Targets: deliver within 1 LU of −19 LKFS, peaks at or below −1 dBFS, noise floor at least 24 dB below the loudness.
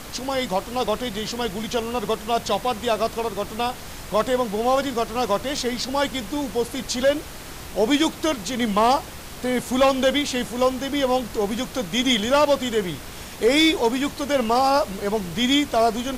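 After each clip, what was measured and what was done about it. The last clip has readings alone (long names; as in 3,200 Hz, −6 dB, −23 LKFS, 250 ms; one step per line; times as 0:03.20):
number of dropouts 1; longest dropout 3.2 ms; background noise floor −37 dBFS; target noise floor −47 dBFS; integrated loudness −22.5 LKFS; sample peak −8.0 dBFS; target loudness −19.0 LKFS
→ repair the gap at 0:05.57, 3.2 ms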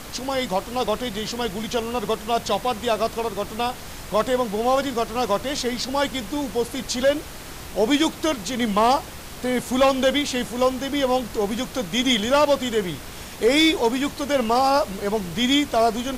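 number of dropouts 0; background noise floor −37 dBFS; target noise floor −47 dBFS
→ noise reduction from a noise print 10 dB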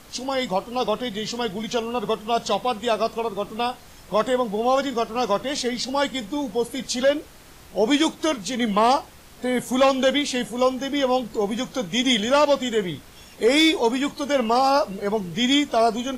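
background noise floor −46 dBFS; target noise floor −47 dBFS
→ noise reduction from a noise print 6 dB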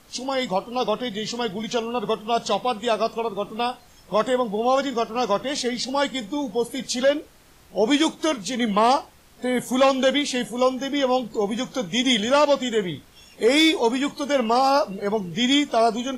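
background noise floor −52 dBFS; integrated loudness −22.5 LKFS; sample peak −8.0 dBFS; target loudness −19.0 LKFS
→ level +3.5 dB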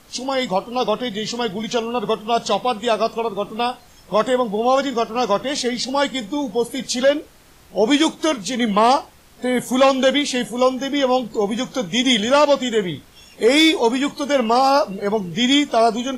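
integrated loudness −19.0 LKFS; sample peak −4.5 dBFS; background noise floor −48 dBFS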